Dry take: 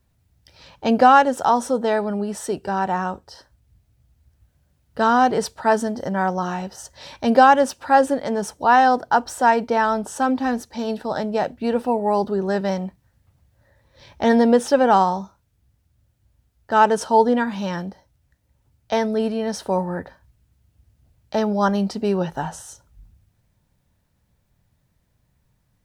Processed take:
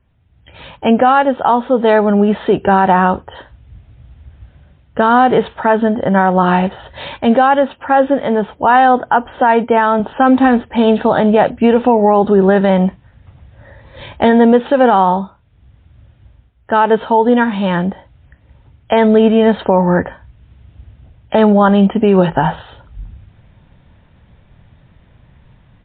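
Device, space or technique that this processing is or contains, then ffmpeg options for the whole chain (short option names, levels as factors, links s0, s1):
low-bitrate web radio: -filter_complex "[0:a]asettb=1/sr,asplit=3[s0][s1][s2];[s0]atrim=end=9.414[s3];[s1]atrim=start=9.41:end=10,asetpts=PTS-STARTPTS,afade=t=in:d=0.004:c=qsin,afade=t=out:st=0.586:d=0.004:c=qsin,highpass=f=81:w=0.5412,highpass=f=81:w=1.3066[s4];[s2]atrim=start=9.996[s5];[s3][s4]acrossfade=d=0.004:c1=hsin:c2=qsin[s6];[s6][s5]acrossfade=d=0.004:c1=qsin:c2=hsin,dynaudnorm=f=290:g=3:m=4.73,alimiter=limit=0.398:level=0:latency=1:release=93,volume=2.11" -ar 8000 -c:a libmp3lame -b:a 24k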